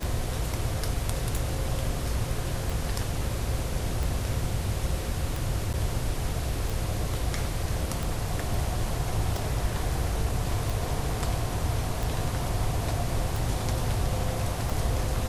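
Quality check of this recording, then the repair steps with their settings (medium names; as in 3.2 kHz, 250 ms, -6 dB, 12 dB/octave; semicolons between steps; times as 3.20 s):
tick 45 rpm
5.73–5.74 s: dropout 8.6 ms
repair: de-click; interpolate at 5.73 s, 8.6 ms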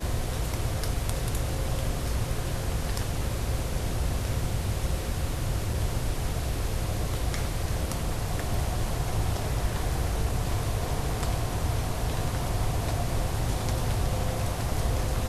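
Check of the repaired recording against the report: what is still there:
nothing left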